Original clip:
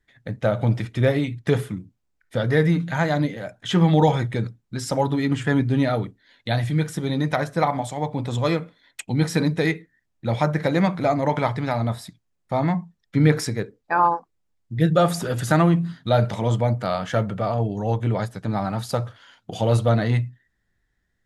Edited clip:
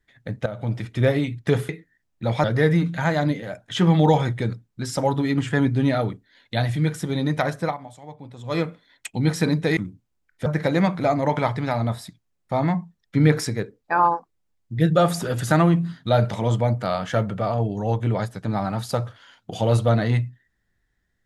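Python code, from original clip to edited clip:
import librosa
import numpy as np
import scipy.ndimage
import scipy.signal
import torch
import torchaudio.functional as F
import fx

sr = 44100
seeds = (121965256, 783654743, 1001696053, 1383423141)

y = fx.edit(x, sr, fx.fade_in_from(start_s=0.46, length_s=0.56, floor_db=-13.5),
    fx.swap(start_s=1.69, length_s=0.69, other_s=9.71, other_length_s=0.75),
    fx.fade_down_up(start_s=7.54, length_s=1.01, db=-14.0, fade_s=0.17), tone=tone)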